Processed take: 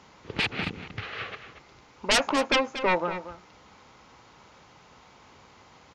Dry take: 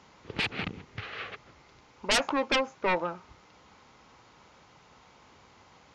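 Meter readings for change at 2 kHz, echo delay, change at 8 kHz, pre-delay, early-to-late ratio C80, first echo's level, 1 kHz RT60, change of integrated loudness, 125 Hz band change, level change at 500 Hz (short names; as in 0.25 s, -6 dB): +3.0 dB, 0.234 s, +3.5 dB, none, none, -12.0 dB, none, +3.0 dB, +3.0 dB, +3.0 dB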